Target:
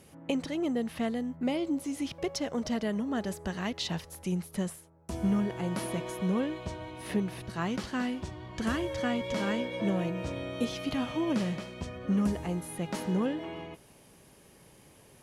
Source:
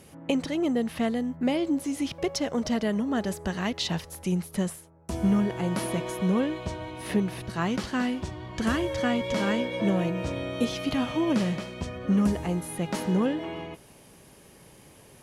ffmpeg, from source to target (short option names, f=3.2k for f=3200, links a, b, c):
-filter_complex "[0:a]asettb=1/sr,asplit=3[a][b][c];[a]atrim=end=1.364[d];[b]atrim=start=1.36:end=1.88,asetpts=PTS-STARTPTS,afade=t=in:d=0.004:c=qsin,afade=t=out:st=0.516:d=0.004:c=qsin,bandreject=f=1.7k:w=12[e];[c]atrim=start=1.876[f];[d][e]acrossfade=d=0.004:c1=hsin:c2=qsin[g];[g][f]acrossfade=d=0.004:c1=qsin:c2=hsin,volume=-4.5dB"